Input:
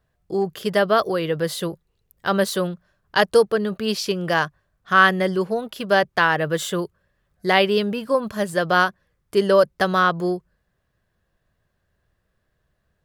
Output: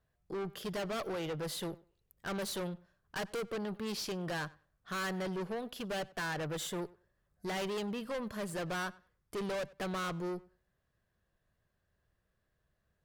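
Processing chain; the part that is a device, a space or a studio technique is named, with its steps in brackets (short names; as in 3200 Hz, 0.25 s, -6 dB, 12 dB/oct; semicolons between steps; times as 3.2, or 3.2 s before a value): 6.67–7.46 bell 2800 Hz -5 dB 1.3 oct; rockabilly slapback (tube stage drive 27 dB, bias 0.3; tape echo 96 ms, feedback 20%, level -20 dB, low-pass 3900 Hz); gain -7.5 dB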